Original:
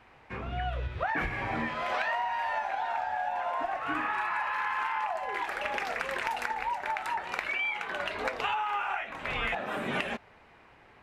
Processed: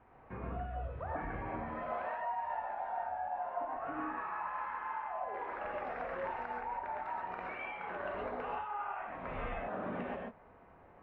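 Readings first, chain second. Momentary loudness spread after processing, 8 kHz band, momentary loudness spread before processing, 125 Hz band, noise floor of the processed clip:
3 LU, below −25 dB, 4 LU, −5.5 dB, −59 dBFS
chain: low-pass filter 1,100 Hz 12 dB per octave
downward compressor, threshold −36 dBFS, peak gain reduction 8 dB
reverb whose tail is shaped and stops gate 160 ms rising, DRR −1.5 dB
level −3.5 dB

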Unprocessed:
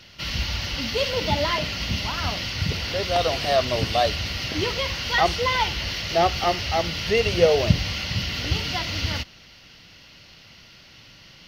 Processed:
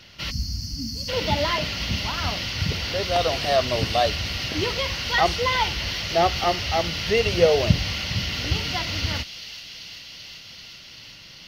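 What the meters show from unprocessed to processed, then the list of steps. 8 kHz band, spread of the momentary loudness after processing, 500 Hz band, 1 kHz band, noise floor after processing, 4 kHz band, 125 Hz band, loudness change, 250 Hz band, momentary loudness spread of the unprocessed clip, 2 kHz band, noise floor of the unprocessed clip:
+1.0 dB, 17 LU, 0.0 dB, 0.0 dB, −44 dBFS, +0.5 dB, 0.0 dB, 0.0 dB, 0.0 dB, 6 LU, 0.0 dB, −49 dBFS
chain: delay with a high-pass on its return 388 ms, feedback 82%, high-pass 3,000 Hz, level −11 dB
gain on a spectral selection 0:00.31–0:01.09, 310–4,200 Hz −25 dB

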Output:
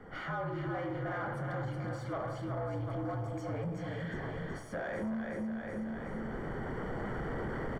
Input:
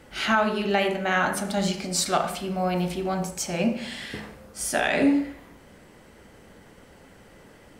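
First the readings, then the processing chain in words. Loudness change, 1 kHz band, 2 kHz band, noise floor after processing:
−12.5 dB, −12.5 dB, −13.5 dB, −42 dBFS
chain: camcorder AGC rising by 13 dB per second
frequency shifter −61 Hz
floating-point word with a short mantissa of 2 bits
repeating echo 371 ms, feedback 49%, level −7 dB
soft clipping −23.5 dBFS, distortion −10 dB
downward compressor 6 to 1, threshold −35 dBFS, peak gain reduction 9.5 dB
Savitzky-Golay smoothing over 41 samples

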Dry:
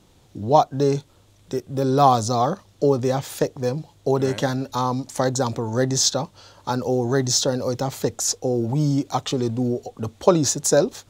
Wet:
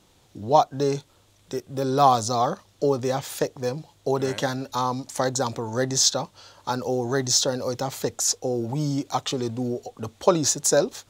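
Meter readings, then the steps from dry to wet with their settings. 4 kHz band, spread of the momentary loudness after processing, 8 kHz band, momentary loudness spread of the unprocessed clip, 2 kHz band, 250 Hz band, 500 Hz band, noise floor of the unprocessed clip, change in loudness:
0.0 dB, 12 LU, 0.0 dB, 10 LU, −0.5 dB, −5.0 dB, −3.0 dB, −56 dBFS, −2.5 dB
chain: low-shelf EQ 450 Hz −6.5 dB

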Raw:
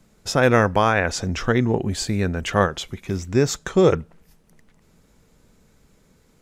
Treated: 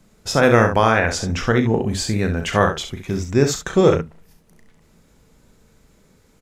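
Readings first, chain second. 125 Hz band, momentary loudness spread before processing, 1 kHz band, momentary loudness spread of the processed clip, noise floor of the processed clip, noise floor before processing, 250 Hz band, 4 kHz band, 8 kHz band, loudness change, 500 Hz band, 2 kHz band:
+2.5 dB, 8 LU, +2.5 dB, 9 LU, −57 dBFS, −59 dBFS, +2.5 dB, +2.5 dB, +2.5 dB, +2.5 dB, +2.5 dB, +2.5 dB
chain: ambience of single reflections 36 ms −8.5 dB, 67 ms −8.5 dB
level +1.5 dB

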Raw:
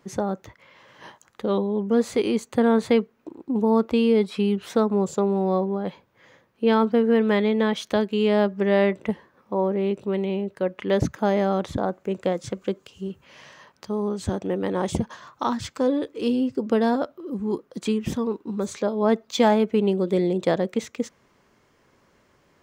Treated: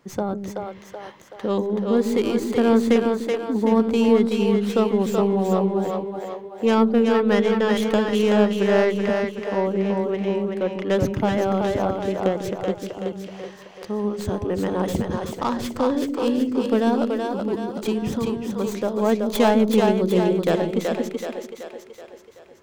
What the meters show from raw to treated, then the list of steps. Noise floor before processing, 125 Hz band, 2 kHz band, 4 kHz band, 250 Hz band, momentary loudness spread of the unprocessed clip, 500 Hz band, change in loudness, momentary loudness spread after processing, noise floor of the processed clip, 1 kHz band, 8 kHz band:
−63 dBFS, +2.5 dB, +2.5 dB, +2.0 dB, +2.5 dB, 11 LU, +2.0 dB, +2.0 dB, 13 LU, −44 dBFS, +2.0 dB, +2.0 dB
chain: stylus tracing distortion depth 0.15 ms
echo with a time of its own for lows and highs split 380 Hz, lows 147 ms, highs 378 ms, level −3.5 dB

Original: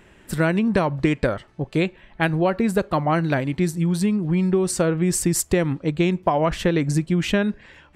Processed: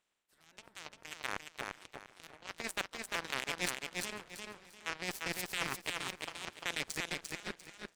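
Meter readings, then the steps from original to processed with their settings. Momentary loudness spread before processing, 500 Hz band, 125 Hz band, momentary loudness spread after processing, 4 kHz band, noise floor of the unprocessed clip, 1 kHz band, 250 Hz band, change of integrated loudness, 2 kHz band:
4 LU, −25.0 dB, −31.0 dB, 14 LU, −6.0 dB, −52 dBFS, −17.5 dB, −29.5 dB, −18.0 dB, −10.0 dB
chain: ceiling on every frequency bin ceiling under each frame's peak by 27 dB
parametric band 84 Hz −8 dB 1.4 octaves
reversed playback
downward compressor 10 to 1, threshold −28 dBFS, peak gain reduction 15.5 dB
reversed playback
sample-and-hold tremolo, depth 75%
harmonic generator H 7 −16 dB, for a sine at −15 dBFS
on a send: repeating echo 347 ms, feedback 27%, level −3.5 dB
on the sum: feedback echo with a swinging delay time 491 ms, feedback 34%, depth 114 cents, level −22 dB
level −2 dB

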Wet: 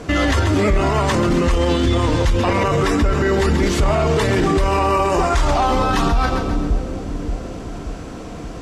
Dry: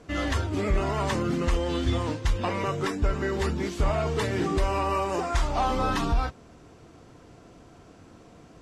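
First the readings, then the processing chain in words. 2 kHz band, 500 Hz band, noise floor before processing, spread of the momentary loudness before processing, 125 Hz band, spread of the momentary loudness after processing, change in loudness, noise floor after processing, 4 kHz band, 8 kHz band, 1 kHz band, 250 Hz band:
+10.5 dB, +10.5 dB, −52 dBFS, 3 LU, +10.0 dB, 13 LU, +9.5 dB, −31 dBFS, +10.0 dB, +10.5 dB, +9.5 dB, +11.0 dB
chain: echo with a time of its own for lows and highs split 490 Hz, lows 580 ms, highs 133 ms, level −11.5 dB
boost into a limiter +25.5 dB
level −8 dB

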